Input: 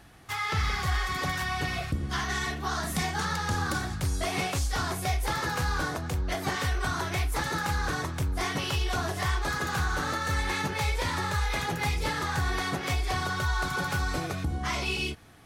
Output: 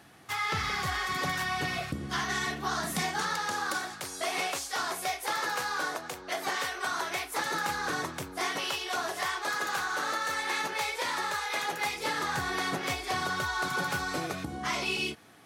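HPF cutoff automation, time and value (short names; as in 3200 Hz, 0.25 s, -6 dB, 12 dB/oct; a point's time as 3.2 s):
2.8 s 150 Hz
3.61 s 440 Hz
7.08 s 440 Hz
8.04 s 210 Hz
8.65 s 430 Hz
11.83 s 430 Hz
12.39 s 190 Hz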